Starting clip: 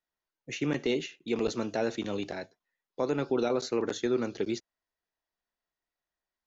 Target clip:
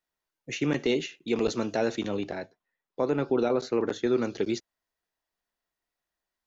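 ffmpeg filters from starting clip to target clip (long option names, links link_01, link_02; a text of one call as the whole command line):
ffmpeg -i in.wav -filter_complex "[0:a]asettb=1/sr,asplit=3[link_01][link_02][link_03];[link_01]atrim=end=2.084[link_04];[link_02]atrim=start=2.08:end=4.07,asetpts=PTS-STARTPTS,afade=type=in:duration=0.004:curve=qsin,afade=type=out:start_time=1.986:duration=0.004:curve=qsin,highshelf=frequency=4100:gain=-11.5[link_05];[link_03]atrim=start=4.066[link_06];[link_04][link_05]acrossfade=duration=0.004:curve1=hsin:curve2=qsin[link_07];[link_07][link_06]acrossfade=duration=0.004:curve1=qsin:curve2=hsin,volume=3dB" out.wav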